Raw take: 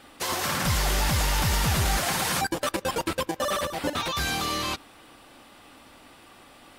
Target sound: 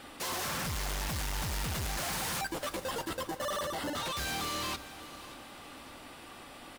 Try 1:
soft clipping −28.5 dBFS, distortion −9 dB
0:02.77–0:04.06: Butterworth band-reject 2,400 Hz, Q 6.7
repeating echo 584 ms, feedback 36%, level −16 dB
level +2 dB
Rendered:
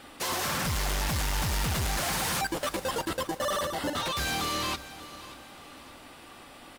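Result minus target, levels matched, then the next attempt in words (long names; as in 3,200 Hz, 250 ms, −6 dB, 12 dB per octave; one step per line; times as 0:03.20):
soft clipping: distortion −4 dB
soft clipping −35.5 dBFS, distortion −5 dB
0:02.77–0:04.06: Butterworth band-reject 2,400 Hz, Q 6.7
repeating echo 584 ms, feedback 36%, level −16 dB
level +2 dB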